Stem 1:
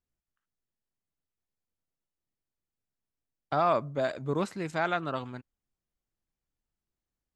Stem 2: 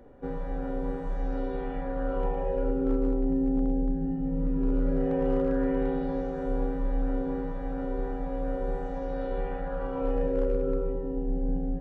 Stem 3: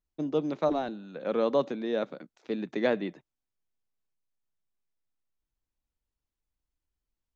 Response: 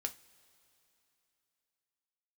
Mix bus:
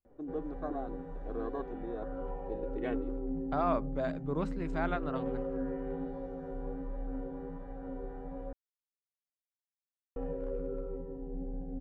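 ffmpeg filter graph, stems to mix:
-filter_complex "[0:a]lowpass=frequency=1700:poles=1,volume=-4.5dB[link_01];[1:a]highshelf=frequency=2400:gain=-10.5,flanger=delay=8.7:depth=5.4:regen=52:speed=1.3:shape=triangular,adelay=50,volume=-5dB,asplit=3[link_02][link_03][link_04];[link_02]atrim=end=8.53,asetpts=PTS-STARTPTS,afade=type=out:start_time=8.526:duration=0.004:curve=hsin[link_05];[link_03]atrim=start=8.53:end=10.16,asetpts=PTS-STARTPTS,volume=0[link_06];[link_04]atrim=start=10.16,asetpts=PTS-STARTPTS,afade=type=in:duration=0.004:curve=hsin[link_07];[link_05][link_06][link_07]concat=n=3:v=0:a=1[link_08];[2:a]aecho=1:1:2.7:0.97,afwtdn=0.0178,volume=-13dB[link_09];[link_01][link_08][link_09]amix=inputs=3:normalize=0"

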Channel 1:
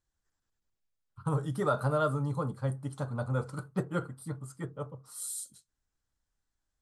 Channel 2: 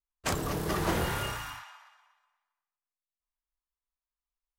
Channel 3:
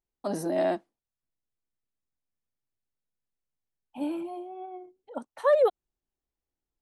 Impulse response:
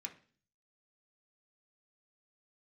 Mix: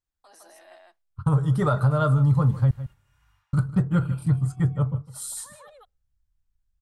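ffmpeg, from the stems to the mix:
-filter_complex "[0:a]agate=range=-15dB:threshold=-48dB:ratio=16:detection=peak,highshelf=frequency=6900:gain=-7,volume=2.5dB,asplit=3[link_01][link_02][link_03];[link_01]atrim=end=2.71,asetpts=PTS-STARTPTS,afade=type=out:start_time=2.706:duration=0.004:curve=hsin[link_04];[link_02]atrim=start=2.71:end=3.53,asetpts=PTS-STARTPTS,volume=0[link_05];[link_03]atrim=start=3.53,asetpts=PTS-STARTPTS,afade=type=in:duration=0.004:curve=hsin[link_06];[link_04][link_05][link_06]concat=n=3:v=0:a=1,asplit=3[link_07][link_08][link_09];[link_08]volume=-17dB[link_10];[1:a]acompressor=threshold=-33dB:ratio=2.5,flanger=delay=19.5:depth=3.5:speed=1.9,tremolo=f=1.2:d=0.77,adelay=1650,volume=-20dB,asplit=3[link_11][link_12][link_13];[link_12]volume=-8.5dB[link_14];[link_13]volume=-9.5dB[link_15];[2:a]highpass=1100,alimiter=level_in=5dB:limit=-24dB:level=0:latency=1:release=66,volume=-5dB,volume=-11dB,asplit=3[link_16][link_17][link_18];[link_17]volume=-10dB[link_19];[link_18]volume=-7.5dB[link_20];[link_09]apad=whole_len=274955[link_21];[link_11][link_21]sidechaingate=range=-33dB:threshold=-57dB:ratio=16:detection=peak[link_22];[link_22][link_16]amix=inputs=2:normalize=0,alimiter=level_in=27.5dB:limit=-24dB:level=0:latency=1,volume=-27.5dB,volume=0dB[link_23];[3:a]atrim=start_sample=2205[link_24];[link_14][link_19]amix=inputs=2:normalize=0[link_25];[link_25][link_24]afir=irnorm=-1:irlink=0[link_26];[link_10][link_15][link_20]amix=inputs=3:normalize=0,aecho=0:1:154:1[link_27];[link_07][link_23][link_26][link_27]amix=inputs=4:normalize=0,asubboost=boost=11.5:cutoff=120,acontrast=37,alimiter=limit=-12.5dB:level=0:latency=1:release=280"

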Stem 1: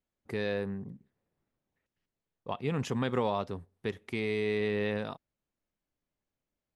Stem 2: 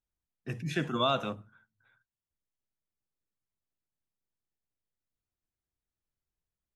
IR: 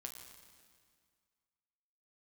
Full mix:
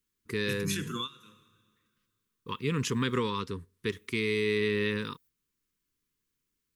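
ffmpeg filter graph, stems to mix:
-filter_complex "[0:a]volume=2dB,asplit=2[link_01][link_02];[1:a]aemphasis=mode=production:type=50fm,alimiter=level_in=0.5dB:limit=-24dB:level=0:latency=1:release=183,volume=-0.5dB,volume=-2.5dB,asplit=3[link_03][link_04][link_05];[link_03]atrim=end=3.16,asetpts=PTS-STARTPTS,afade=type=out:start_time=3.156:duration=0.004:curve=hsin[link_06];[link_04]atrim=start=3.16:end=3.86,asetpts=PTS-STARTPTS,volume=0[link_07];[link_05]atrim=start=3.86,asetpts=PTS-STARTPTS,afade=type=in:duration=0.004:curve=hsin[link_08];[link_06][link_07][link_08]concat=n=3:v=0:a=1,asplit=2[link_09][link_10];[link_10]volume=-13.5dB[link_11];[link_02]apad=whole_len=297947[link_12];[link_09][link_12]sidechaingate=range=-33dB:threshold=-55dB:ratio=16:detection=peak[link_13];[2:a]atrim=start_sample=2205[link_14];[link_11][link_14]afir=irnorm=-1:irlink=0[link_15];[link_01][link_13][link_15]amix=inputs=3:normalize=0,asuperstop=centerf=680:order=8:qfactor=1.4,highshelf=frequency=3000:gain=9"

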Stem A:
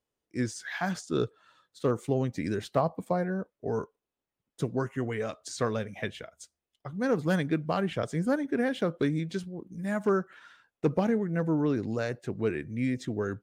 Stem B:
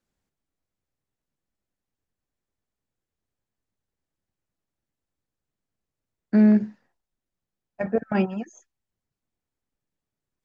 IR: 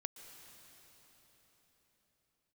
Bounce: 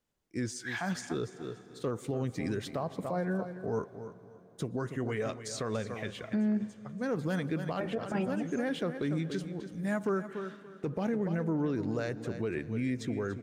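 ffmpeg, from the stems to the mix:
-filter_complex "[0:a]volume=-2.5dB,asplit=3[link_01][link_02][link_03];[link_02]volume=-8.5dB[link_04];[link_03]volume=-11dB[link_05];[1:a]volume=-5.5dB,asplit=3[link_06][link_07][link_08];[link_07]volume=-13.5dB[link_09];[link_08]apad=whole_len=592240[link_10];[link_01][link_10]sidechaincompress=threshold=-37dB:ratio=8:attack=38:release=531[link_11];[2:a]atrim=start_sample=2205[link_12];[link_04][link_09]amix=inputs=2:normalize=0[link_13];[link_13][link_12]afir=irnorm=-1:irlink=0[link_14];[link_05]aecho=0:1:287|574|861|1148:1|0.24|0.0576|0.0138[link_15];[link_11][link_06][link_14][link_15]amix=inputs=4:normalize=0,alimiter=limit=-23.5dB:level=0:latency=1:release=72"

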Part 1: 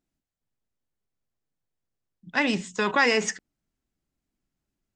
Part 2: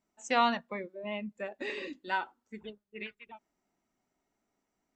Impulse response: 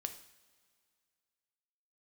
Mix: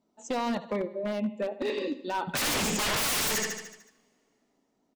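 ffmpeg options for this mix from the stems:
-filter_complex "[0:a]agate=range=-33dB:threshold=-41dB:ratio=3:detection=peak,aeval=exprs='0.422*sin(PI/2*5.01*val(0)/0.422)':channel_layout=same,volume=-9.5dB,asplit=3[link_01][link_02][link_03];[link_02]volume=-8.5dB[link_04];[link_03]volume=-3.5dB[link_05];[1:a]equalizer=frequency=125:width_type=o:width=1:gain=8,equalizer=frequency=250:width_type=o:width=1:gain=12,equalizer=frequency=500:width_type=o:width=1:gain=11,equalizer=frequency=1000:width_type=o:width=1:gain=7,equalizer=frequency=2000:width_type=o:width=1:gain=-3,equalizer=frequency=4000:width_type=o:width=1:gain=10,alimiter=limit=-16.5dB:level=0:latency=1:release=36,volume=-3.5dB,asplit=2[link_06][link_07];[link_07]volume=-15dB[link_08];[2:a]atrim=start_sample=2205[link_09];[link_04][link_09]afir=irnorm=-1:irlink=0[link_10];[link_05][link_08]amix=inputs=2:normalize=0,aecho=0:1:74|148|222|296|370|444|518|592:1|0.56|0.314|0.176|0.0983|0.0551|0.0308|0.0173[link_11];[link_01][link_06][link_10][link_11]amix=inputs=4:normalize=0,aeval=exprs='0.0708*(abs(mod(val(0)/0.0708+3,4)-2)-1)':channel_layout=same"

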